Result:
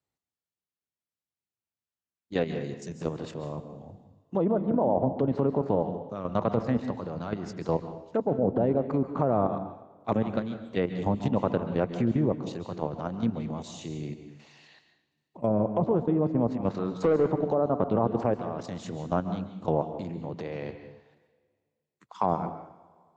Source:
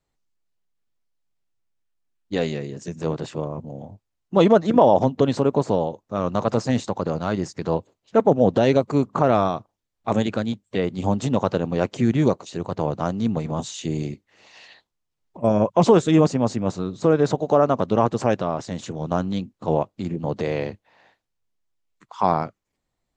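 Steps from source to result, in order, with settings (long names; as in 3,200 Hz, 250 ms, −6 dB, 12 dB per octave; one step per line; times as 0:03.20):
treble cut that deepens with the level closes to 870 Hz, closed at −14 dBFS
high-pass filter 66 Hz 24 dB per octave
output level in coarse steps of 11 dB
0:16.70–0:17.29: mid-hump overdrive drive 20 dB, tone 1,000 Hz, clips at −11 dBFS
on a send: convolution reverb, pre-delay 130 ms, DRR 9 dB
on the sum: level −2 dB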